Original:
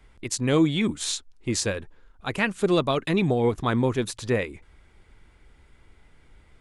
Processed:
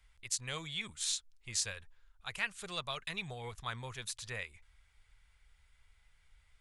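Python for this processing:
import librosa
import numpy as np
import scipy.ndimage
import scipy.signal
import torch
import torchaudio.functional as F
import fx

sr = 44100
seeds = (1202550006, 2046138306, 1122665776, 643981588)

y = fx.tone_stack(x, sr, knobs='10-0-10')
y = y * 10.0 ** (-5.0 / 20.0)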